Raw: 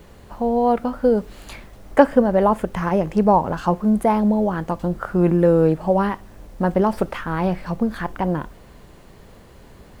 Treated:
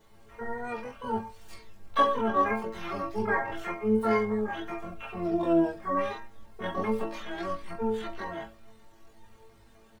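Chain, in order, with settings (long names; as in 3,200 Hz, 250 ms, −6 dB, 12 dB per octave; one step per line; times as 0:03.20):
stiff-string resonator 110 Hz, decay 0.43 s, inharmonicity 0.002
pitch-shifted copies added −12 semitones −11 dB, +12 semitones 0 dB
multi-voice chorus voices 4, 0.57 Hz, delay 22 ms, depth 1.8 ms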